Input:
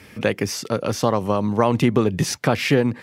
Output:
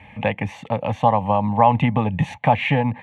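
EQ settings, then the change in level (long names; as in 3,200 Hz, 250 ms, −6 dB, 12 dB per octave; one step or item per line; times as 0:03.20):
low-pass filter 2,800 Hz 12 dB per octave
parametric band 840 Hz +11 dB 0.21 octaves
phaser with its sweep stopped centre 1,400 Hz, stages 6
+3.5 dB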